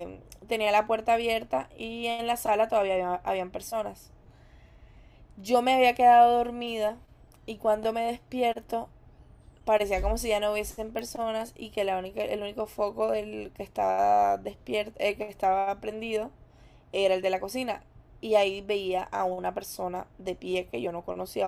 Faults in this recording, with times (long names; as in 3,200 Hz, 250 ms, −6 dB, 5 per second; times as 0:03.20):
0:10.99: click −22 dBFS